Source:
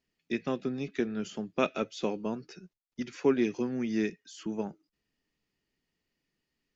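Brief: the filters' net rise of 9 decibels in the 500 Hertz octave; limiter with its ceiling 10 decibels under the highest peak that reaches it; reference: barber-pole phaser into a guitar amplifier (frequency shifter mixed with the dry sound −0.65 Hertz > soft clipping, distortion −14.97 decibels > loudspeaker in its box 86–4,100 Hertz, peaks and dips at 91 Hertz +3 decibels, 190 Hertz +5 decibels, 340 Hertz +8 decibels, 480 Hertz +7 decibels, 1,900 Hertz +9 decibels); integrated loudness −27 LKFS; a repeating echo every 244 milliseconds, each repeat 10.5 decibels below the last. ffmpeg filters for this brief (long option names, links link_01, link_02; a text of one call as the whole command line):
ffmpeg -i in.wav -filter_complex "[0:a]equalizer=frequency=500:width_type=o:gain=4,alimiter=limit=-21dB:level=0:latency=1,aecho=1:1:244|488|732:0.299|0.0896|0.0269,asplit=2[link_01][link_02];[link_02]afreqshift=-0.65[link_03];[link_01][link_03]amix=inputs=2:normalize=1,asoftclip=threshold=-28dB,highpass=86,equalizer=frequency=91:width_type=q:width=4:gain=3,equalizer=frequency=190:width_type=q:width=4:gain=5,equalizer=frequency=340:width_type=q:width=4:gain=8,equalizer=frequency=480:width_type=q:width=4:gain=7,equalizer=frequency=1900:width_type=q:width=4:gain=9,lowpass=frequency=4100:width=0.5412,lowpass=frequency=4100:width=1.3066,volume=7.5dB" out.wav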